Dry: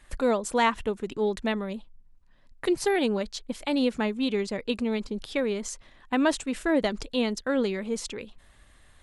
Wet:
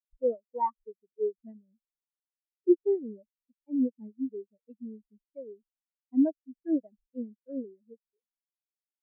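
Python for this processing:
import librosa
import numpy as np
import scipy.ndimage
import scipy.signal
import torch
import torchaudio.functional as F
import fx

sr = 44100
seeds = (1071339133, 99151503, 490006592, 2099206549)

y = fx.spectral_expand(x, sr, expansion=4.0)
y = F.gain(torch.from_numpy(y), -1.5).numpy()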